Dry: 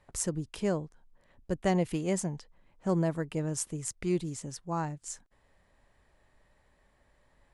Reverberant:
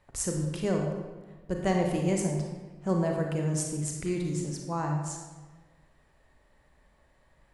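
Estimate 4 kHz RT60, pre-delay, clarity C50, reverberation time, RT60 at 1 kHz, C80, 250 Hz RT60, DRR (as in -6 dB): 0.90 s, 30 ms, 2.5 dB, 1.3 s, 1.3 s, 4.5 dB, 1.5 s, 1.0 dB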